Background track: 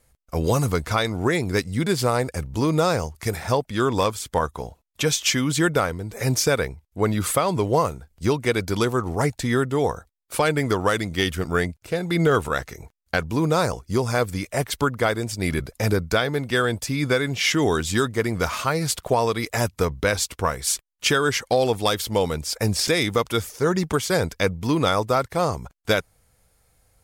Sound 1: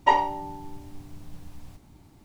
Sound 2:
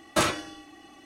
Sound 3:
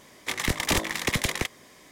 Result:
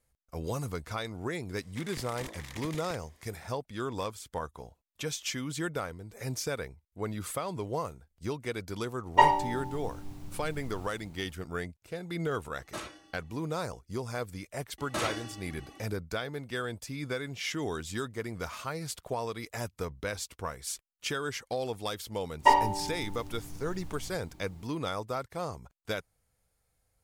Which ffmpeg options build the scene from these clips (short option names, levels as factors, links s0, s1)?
-filter_complex "[1:a]asplit=2[s0][s1];[2:a]asplit=2[s2][s3];[0:a]volume=0.211[s4];[3:a]alimiter=limit=0.112:level=0:latency=1:release=33[s5];[s3]alimiter=limit=0.0944:level=0:latency=1:release=34[s6];[s5]atrim=end=1.91,asetpts=PTS-STARTPTS,volume=0.2,afade=t=in:d=0.004:c=hsin,afade=t=out:st=1.906:d=0.004:c=hsin,adelay=1490[s7];[s0]atrim=end=2.24,asetpts=PTS-STARTPTS,volume=0.944,afade=t=in:d=0.05,afade=t=out:st=2.19:d=0.05,adelay=9110[s8];[s2]atrim=end=1.05,asetpts=PTS-STARTPTS,volume=0.15,afade=t=in:d=0.004:c=hsin,afade=t=out:st=1.046:d=0.004:c=hsin,adelay=12570[s9];[s6]atrim=end=1.05,asetpts=PTS-STARTPTS,volume=0.794,afade=t=in:d=0.004:c=hsin,afade=t=out:st=1.046:d=0.004:c=hsin,adelay=14780[s10];[s1]atrim=end=2.24,asetpts=PTS-STARTPTS,volume=0.891,afade=t=in:d=0.004:c=hsin,afade=t=out:st=2.236:d=0.004:c=hsin,adelay=22390[s11];[s4][s7][s8][s9][s10][s11]amix=inputs=6:normalize=0"